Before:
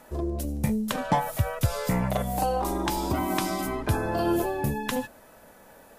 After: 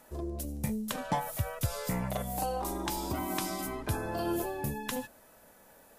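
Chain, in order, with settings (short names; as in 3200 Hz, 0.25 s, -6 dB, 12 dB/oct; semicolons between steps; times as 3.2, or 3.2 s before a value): high shelf 4600 Hz +6.5 dB; gain -7.5 dB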